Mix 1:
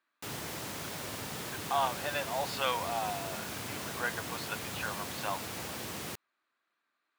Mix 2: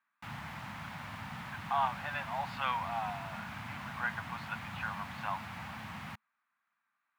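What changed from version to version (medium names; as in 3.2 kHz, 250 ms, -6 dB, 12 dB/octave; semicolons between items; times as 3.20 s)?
master: add FFT filter 220 Hz 0 dB, 400 Hz -25 dB, 830 Hz +1 dB, 2.2 kHz -1 dB, 5.7 kHz -17 dB, 8.6 kHz -20 dB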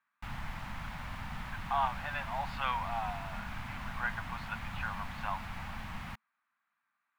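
background: remove high-pass 93 Hz 24 dB/octave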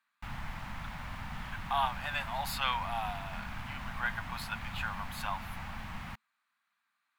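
speech: remove low-pass 2.1 kHz 12 dB/octave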